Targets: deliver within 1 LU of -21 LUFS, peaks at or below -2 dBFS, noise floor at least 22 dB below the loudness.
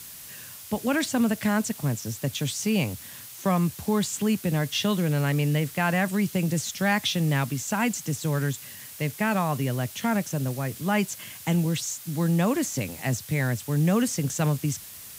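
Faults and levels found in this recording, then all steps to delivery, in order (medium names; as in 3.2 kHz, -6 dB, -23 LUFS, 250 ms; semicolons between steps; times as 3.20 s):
noise floor -43 dBFS; noise floor target -48 dBFS; loudness -26.0 LUFS; peak level -9.5 dBFS; loudness target -21.0 LUFS
-> noise print and reduce 6 dB; trim +5 dB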